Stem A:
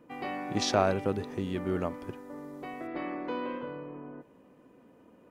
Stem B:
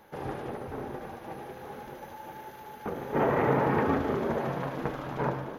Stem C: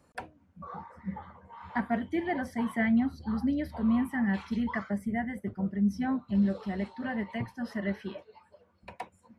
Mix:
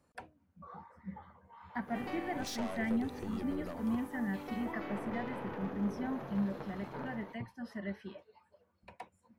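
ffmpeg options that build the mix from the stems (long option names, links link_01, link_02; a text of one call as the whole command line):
ffmpeg -i stem1.wav -i stem2.wav -i stem3.wav -filter_complex "[0:a]highshelf=frequency=7600:gain=9.5,adelay=1850,volume=-1dB[link_01];[1:a]adelay=1750,volume=-10dB[link_02];[2:a]volume=-8dB[link_03];[link_01][link_02]amix=inputs=2:normalize=0,aeval=exprs='(tanh(35.5*val(0)+0.45)-tanh(0.45))/35.5':channel_layout=same,acompressor=threshold=-38dB:ratio=6,volume=0dB[link_04];[link_03][link_04]amix=inputs=2:normalize=0" out.wav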